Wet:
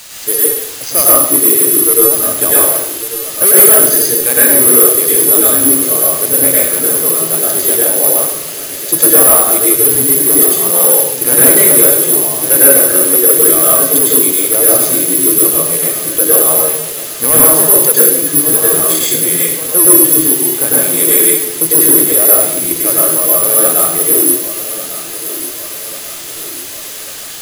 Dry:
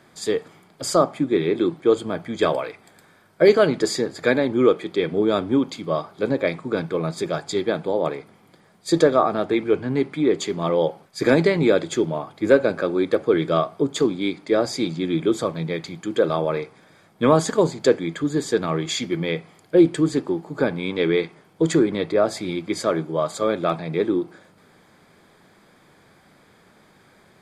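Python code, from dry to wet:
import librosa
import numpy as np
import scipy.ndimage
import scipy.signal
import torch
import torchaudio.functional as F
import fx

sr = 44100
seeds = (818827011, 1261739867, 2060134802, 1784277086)

p1 = fx.wiener(x, sr, points=15)
p2 = fx.peak_eq(p1, sr, hz=210.0, db=-9.0, octaves=0.51)
p3 = fx.quant_dither(p2, sr, seeds[0], bits=6, dither='triangular')
p4 = p3 + fx.echo_feedback(p3, sr, ms=1144, feedback_pct=55, wet_db=-13.5, dry=0)
p5 = (np.kron(scipy.signal.resample_poly(p4, 1, 4), np.eye(4)[0]) * 4)[:len(p4)]
p6 = fx.peak_eq(p5, sr, hz=5600.0, db=6.5, octaves=2.8)
p7 = fx.rev_plate(p6, sr, seeds[1], rt60_s=0.82, hf_ratio=0.85, predelay_ms=90, drr_db=-5.5)
p8 = np.clip(10.0 ** (0.0 / 20.0) * p7, -1.0, 1.0) / 10.0 ** (0.0 / 20.0)
y = F.gain(torch.from_numpy(p8), -1.0).numpy()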